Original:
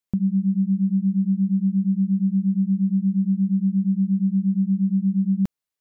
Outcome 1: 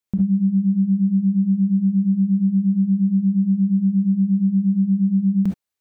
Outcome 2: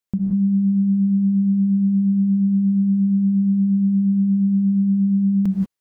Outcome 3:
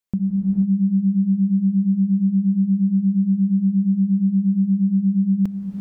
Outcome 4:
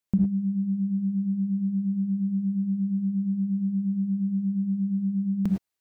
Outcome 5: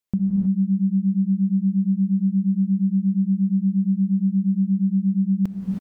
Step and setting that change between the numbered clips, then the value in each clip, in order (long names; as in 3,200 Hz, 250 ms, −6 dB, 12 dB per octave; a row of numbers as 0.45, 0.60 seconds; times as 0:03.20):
reverb whose tail is shaped and stops, gate: 90, 210, 510, 130, 340 milliseconds